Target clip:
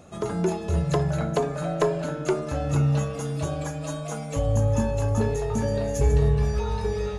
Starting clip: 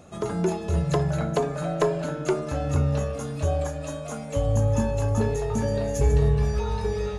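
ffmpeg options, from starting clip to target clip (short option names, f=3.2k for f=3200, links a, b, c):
-filter_complex "[0:a]asettb=1/sr,asplit=3[a][b][c];[a]atrim=end=2.724[d];[b]atrim=start=2.72:end=4.39,asetpts=PTS-STARTPTS,afade=t=in:d=0.004:c=qsin,afade=t=out:st=1.666:d=0.004:c=qsin,aecho=1:1:6.1:0.77,atrim=end_sample=73647[e];[c]atrim=start=4.386[f];[d][e]acrossfade=d=0.004:c1=hsin:c2=qsin[g];[g][f]acrossfade=d=0.004:c1=qsin:c2=hsin"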